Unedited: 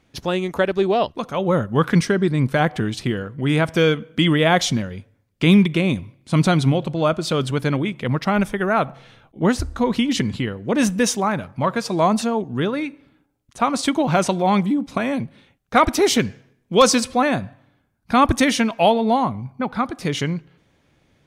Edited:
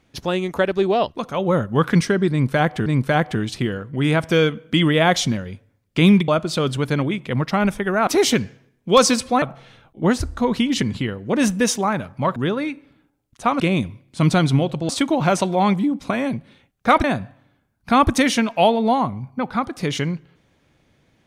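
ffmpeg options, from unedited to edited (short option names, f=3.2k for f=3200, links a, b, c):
-filter_complex "[0:a]asplit=9[a][b][c][d][e][f][g][h][i];[a]atrim=end=2.862[j];[b]atrim=start=2.308:end=5.732[k];[c]atrim=start=7.018:end=8.812[l];[d]atrim=start=15.908:end=17.262[m];[e]atrim=start=8.808:end=11.752[n];[f]atrim=start=12.518:end=13.762[o];[g]atrim=start=5.728:end=7.022[p];[h]atrim=start=13.758:end=15.912[q];[i]atrim=start=17.258[r];[j][k]acrossfade=d=0.004:c1=hsin:c2=hsin[s];[s][l]acrossfade=d=0.004:c1=hsin:c2=hsin[t];[t][m]acrossfade=d=0.004:c1=hsin:c2=hsin[u];[u][n]acrossfade=d=0.004:c1=hsin:c2=hsin[v];[v][o]acrossfade=d=0.004:c1=hsin:c2=hsin[w];[w][p]acrossfade=d=0.004:c1=hsin:c2=hsin[x];[x][q]acrossfade=d=0.004:c1=hsin:c2=hsin[y];[y][r]acrossfade=d=0.004:c1=hsin:c2=hsin"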